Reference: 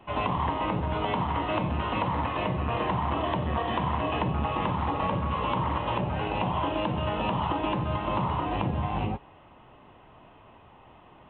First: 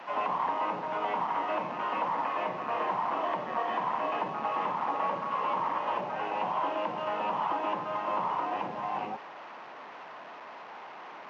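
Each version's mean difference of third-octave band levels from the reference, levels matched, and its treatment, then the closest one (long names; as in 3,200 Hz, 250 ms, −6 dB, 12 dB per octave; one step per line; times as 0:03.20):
6.5 dB: linear delta modulator 32 kbit/s, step −37.5 dBFS
high-pass filter 180 Hz 24 dB per octave
in parallel at −11 dB: soft clipping −34.5 dBFS, distortion −7 dB
on the sum: three-way crossover with the lows and the highs turned down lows −13 dB, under 520 Hz, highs −19 dB, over 2,400 Hz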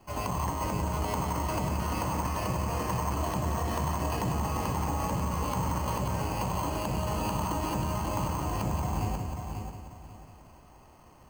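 10.0 dB: low-shelf EQ 120 Hz +8 dB
echo machine with several playback heads 180 ms, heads first and third, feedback 44%, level −6.5 dB
bad sample-rate conversion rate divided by 6×, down filtered, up hold
level −6 dB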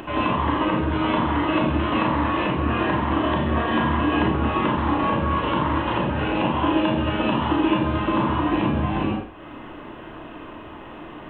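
3.0 dB: in parallel at −1.5 dB: downward compressor, threshold −42 dBFS, peak gain reduction 17.5 dB
on the sum: four-comb reverb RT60 0.45 s, combs from 27 ms, DRR −0.5 dB
upward compression, threshold −34 dBFS
thirty-one-band graphic EQ 100 Hz −6 dB, 315 Hz +12 dB, 800 Hz −5 dB, 1,600 Hz +7 dB
level +1.5 dB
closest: third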